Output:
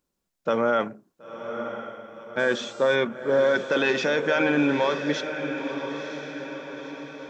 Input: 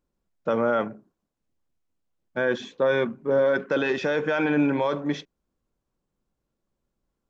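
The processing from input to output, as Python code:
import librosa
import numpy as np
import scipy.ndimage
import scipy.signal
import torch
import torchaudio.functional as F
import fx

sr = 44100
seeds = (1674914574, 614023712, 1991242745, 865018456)

y = fx.low_shelf(x, sr, hz=78.0, db=-10.0)
y = fx.dmg_buzz(y, sr, base_hz=400.0, harmonics=20, level_db=-56.0, tilt_db=-2, odd_only=False, at=(2.38, 2.94), fade=0.02)
y = fx.high_shelf(y, sr, hz=2600.0, db=9.0)
y = fx.echo_diffused(y, sr, ms=981, feedback_pct=53, wet_db=-8.5)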